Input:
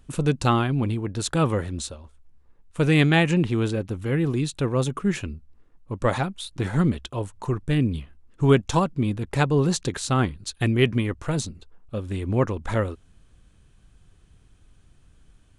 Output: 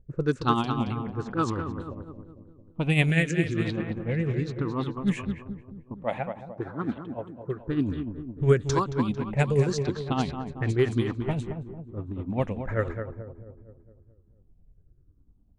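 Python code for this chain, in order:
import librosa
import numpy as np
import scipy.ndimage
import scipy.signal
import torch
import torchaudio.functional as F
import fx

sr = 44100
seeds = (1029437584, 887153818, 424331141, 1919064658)

y = fx.spec_ripple(x, sr, per_octave=0.52, drift_hz=-0.95, depth_db=13)
y = fx.highpass(y, sr, hz=300.0, slope=6, at=(5.94, 7.6))
y = fx.echo_feedback(y, sr, ms=224, feedback_pct=57, wet_db=-7.5)
y = y * (1.0 - 0.52 / 2.0 + 0.52 / 2.0 * np.cos(2.0 * np.pi * 10.0 * (np.arange(len(y)) / sr)))
y = fx.env_lowpass(y, sr, base_hz=380.0, full_db=-14.5)
y = fx.peak_eq(y, sr, hz=880.0, db=-13.0, octaves=1.0, at=(3.1, 3.65))
y = y * 10.0 ** (-4.5 / 20.0)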